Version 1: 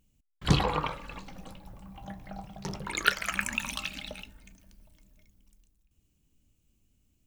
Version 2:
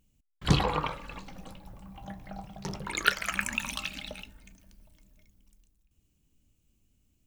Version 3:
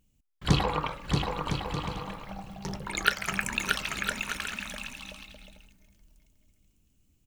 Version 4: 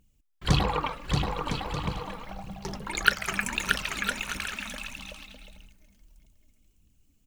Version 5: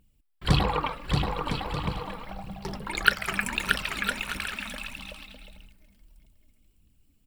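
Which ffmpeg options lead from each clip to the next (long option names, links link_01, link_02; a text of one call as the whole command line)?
ffmpeg -i in.wav -af anull out.wav
ffmpeg -i in.wav -af "aecho=1:1:630|1008|1235|1371|1453:0.631|0.398|0.251|0.158|0.1" out.wav
ffmpeg -i in.wav -af "aphaser=in_gain=1:out_gain=1:delay=4.7:decay=0.46:speed=1.6:type=triangular" out.wav
ffmpeg -i in.wav -af "equalizer=frequency=6400:width_type=o:width=0.25:gain=-12,volume=1dB" out.wav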